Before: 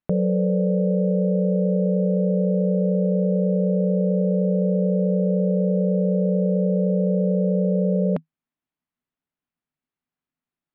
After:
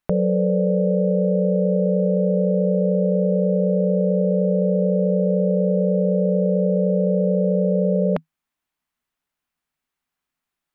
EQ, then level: graphic EQ 125/250/500 Hz -9/-7/-4 dB; +8.5 dB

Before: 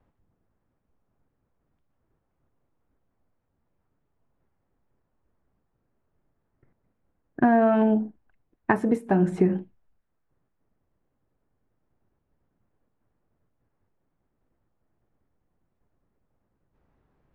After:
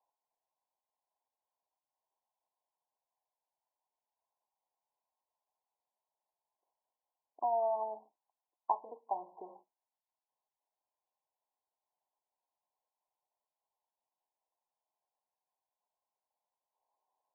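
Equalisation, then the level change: Chebyshev high-pass 790 Hz, order 3; brick-wall FIR low-pass 1.1 kHz; -5.0 dB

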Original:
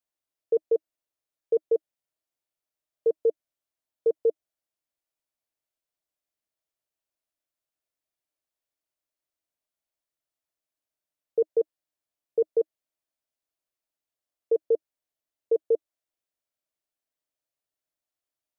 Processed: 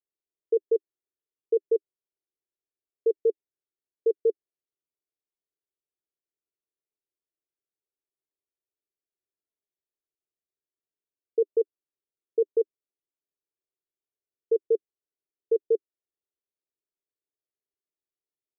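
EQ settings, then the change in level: resonant low-pass 400 Hz, resonance Q 4.9; peaking EQ 240 Hz -4.5 dB; -8.0 dB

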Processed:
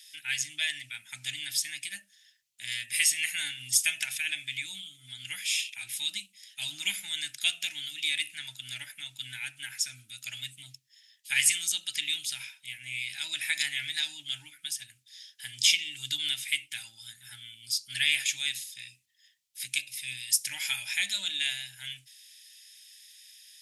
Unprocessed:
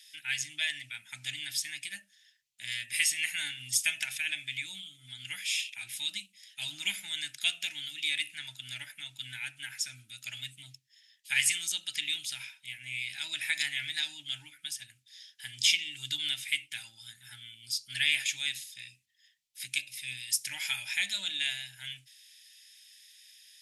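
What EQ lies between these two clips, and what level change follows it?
treble shelf 4.6 kHz +5.5 dB; 0.0 dB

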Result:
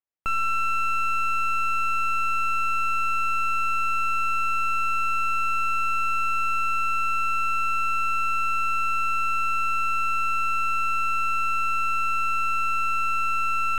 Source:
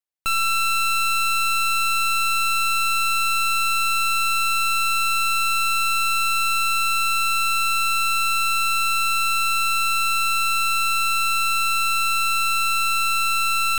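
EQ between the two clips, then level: boxcar filter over 10 samples; 0.0 dB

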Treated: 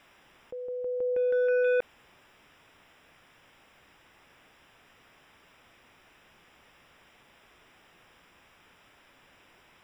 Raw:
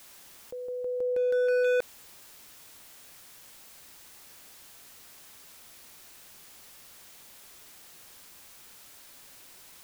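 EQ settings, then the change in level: Savitzky-Golay filter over 25 samples; 0.0 dB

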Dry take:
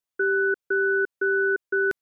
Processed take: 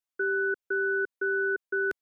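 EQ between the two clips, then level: peaking EQ 130 Hz -8.5 dB 1.3 oct; -4.5 dB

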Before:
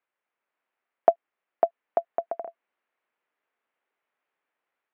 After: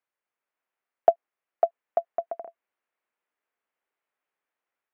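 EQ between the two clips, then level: dynamic bell 650 Hz, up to +5 dB, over -30 dBFS, Q 0.87; -4.5 dB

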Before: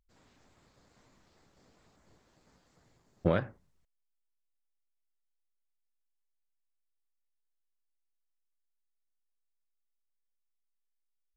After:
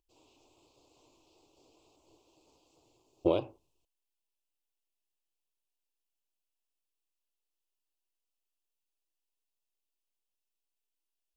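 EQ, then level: FFT filter 140 Hz 0 dB, 200 Hz -10 dB, 320 Hz +14 dB, 540 Hz +8 dB, 1 kHz +9 dB, 1.8 kHz -24 dB, 2.6 kHz +14 dB, 3.9 kHz +9 dB; -7.5 dB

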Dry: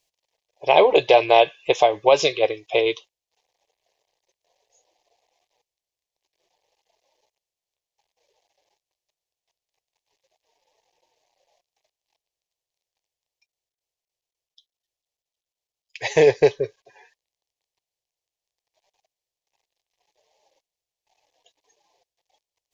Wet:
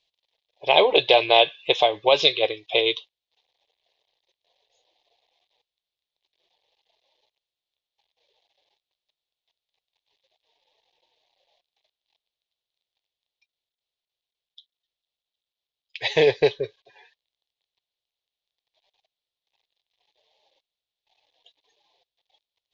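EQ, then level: resonant low-pass 3.7 kHz, resonance Q 3.9; -3.5 dB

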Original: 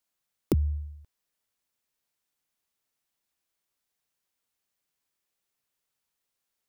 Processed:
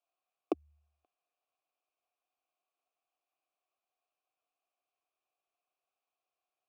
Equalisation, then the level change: vowel filter a; resonant low shelf 220 Hz -11 dB, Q 3; +8.5 dB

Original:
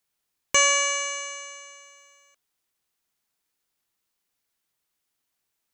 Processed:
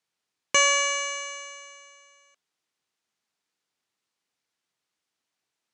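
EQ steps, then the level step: band-pass 120–6800 Hz; 0.0 dB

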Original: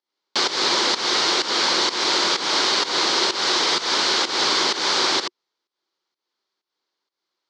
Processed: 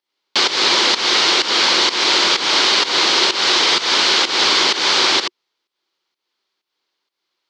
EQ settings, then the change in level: peaking EQ 2.7 kHz +6.5 dB 0.94 oct; +3.0 dB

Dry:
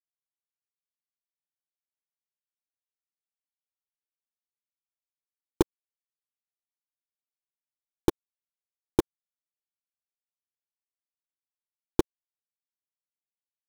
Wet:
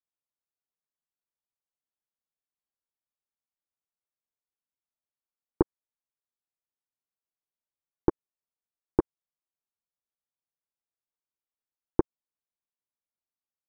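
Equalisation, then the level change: low-pass 1.4 kHz 24 dB/octave; 0.0 dB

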